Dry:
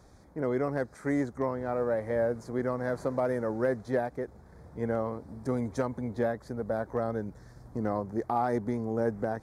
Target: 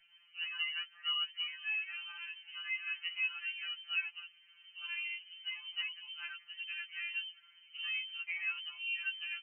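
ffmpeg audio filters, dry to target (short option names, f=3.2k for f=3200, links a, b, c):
-af "equalizer=f=1.2k:w=1.2:g=5.5,lowpass=f=2.7k:t=q:w=0.5098,lowpass=f=2.7k:t=q:w=0.6013,lowpass=f=2.7k:t=q:w=0.9,lowpass=f=2.7k:t=q:w=2.563,afreqshift=-3200,aeval=exprs='val(0)+0.000282*(sin(2*PI*50*n/s)+sin(2*PI*2*50*n/s)/2+sin(2*PI*3*50*n/s)/3+sin(2*PI*4*50*n/s)/4+sin(2*PI*5*50*n/s)/5)':c=same,afftfilt=real='re*2.83*eq(mod(b,8),0)':imag='im*2.83*eq(mod(b,8),0)':win_size=2048:overlap=0.75,volume=-7.5dB"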